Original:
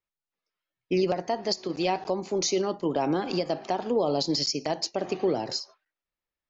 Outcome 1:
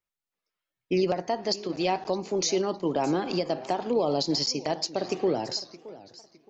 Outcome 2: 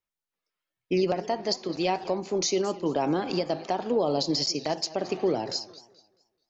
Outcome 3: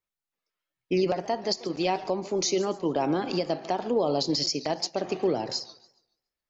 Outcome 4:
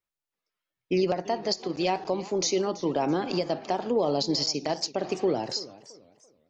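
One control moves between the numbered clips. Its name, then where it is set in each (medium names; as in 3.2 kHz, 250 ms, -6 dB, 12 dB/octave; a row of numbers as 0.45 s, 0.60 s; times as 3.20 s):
modulated delay, time: 616 ms, 216 ms, 141 ms, 337 ms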